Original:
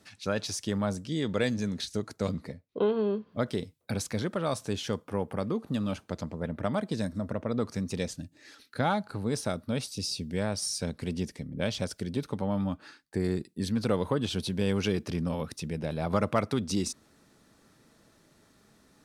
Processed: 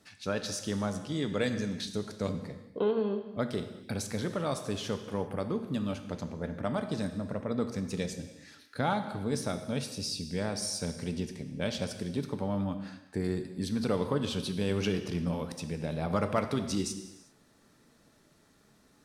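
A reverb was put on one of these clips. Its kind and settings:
reverb whose tail is shaped and stops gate 420 ms falling, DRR 7 dB
level −2.5 dB

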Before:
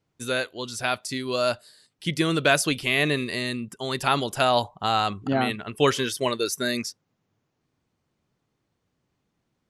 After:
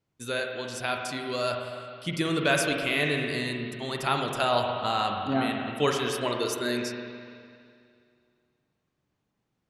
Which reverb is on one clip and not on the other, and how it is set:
spring reverb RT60 2.3 s, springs 41/52 ms, chirp 70 ms, DRR 2 dB
level −5 dB

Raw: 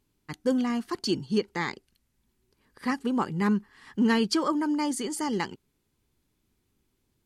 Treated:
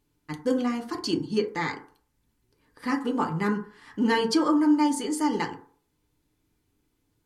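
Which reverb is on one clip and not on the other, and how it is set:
feedback delay network reverb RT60 0.47 s, low-frequency decay 0.75×, high-frequency decay 0.35×, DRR 1.5 dB
level −1 dB

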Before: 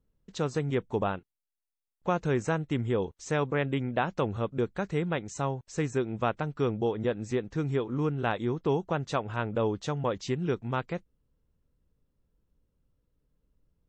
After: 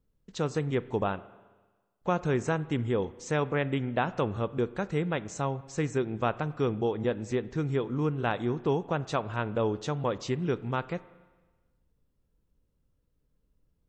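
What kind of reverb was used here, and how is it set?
spring reverb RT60 1.3 s, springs 33/45 ms, chirp 55 ms, DRR 16.5 dB

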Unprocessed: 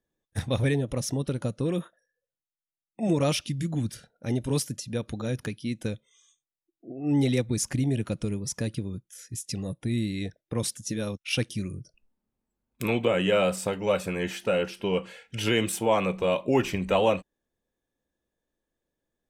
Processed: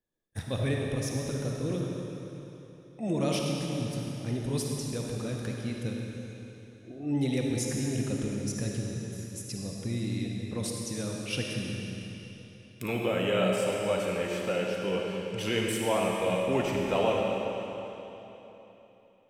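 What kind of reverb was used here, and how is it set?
comb and all-pass reverb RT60 3.5 s, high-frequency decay 0.95×, pre-delay 15 ms, DRR −1 dB
level −6 dB

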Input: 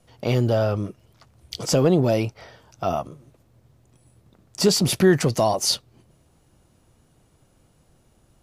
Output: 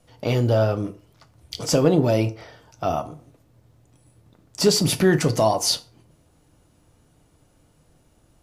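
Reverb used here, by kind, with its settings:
feedback delay network reverb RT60 0.43 s, low-frequency decay 0.9×, high-frequency decay 0.65×, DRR 8 dB

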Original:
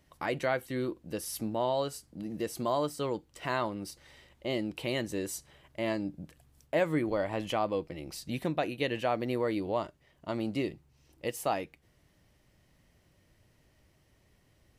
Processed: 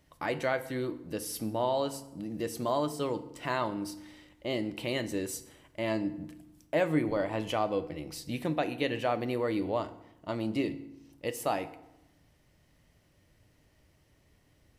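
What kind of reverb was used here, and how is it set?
feedback delay network reverb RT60 0.88 s, low-frequency decay 1.35×, high-frequency decay 0.7×, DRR 10.5 dB

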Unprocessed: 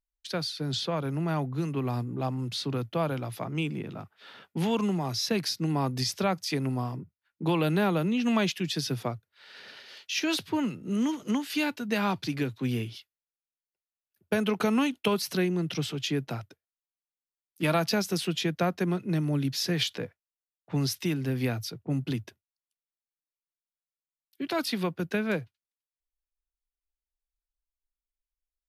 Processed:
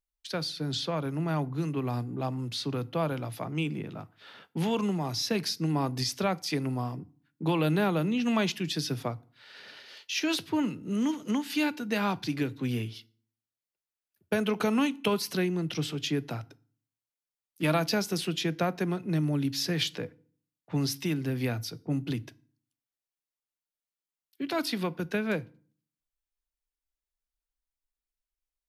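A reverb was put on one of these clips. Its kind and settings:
feedback delay network reverb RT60 0.46 s, low-frequency decay 1.4×, high-frequency decay 0.8×, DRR 17.5 dB
level −1 dB

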